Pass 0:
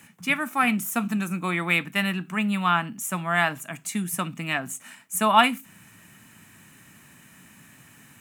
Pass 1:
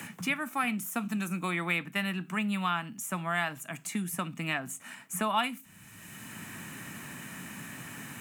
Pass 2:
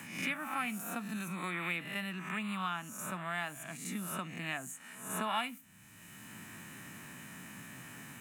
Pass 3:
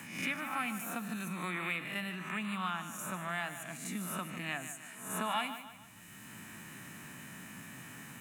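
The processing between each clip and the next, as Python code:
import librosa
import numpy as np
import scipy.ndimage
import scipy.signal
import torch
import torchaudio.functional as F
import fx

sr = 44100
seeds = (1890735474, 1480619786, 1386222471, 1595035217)

y1 = fx.band_squash(x, sr, depth_pct=70)
y1 = y1 * 10.0 ** (-6.5 / 20.0)
y2 = fx.spec_swells(y1, sr, rise_s=0.68)
y2 = y2 * 10.0 ** (-8.0 / 20.0)
y3 = fx.echo_feedback(y2, sr, ms=150, feedback_pct=42, wet_db=-11)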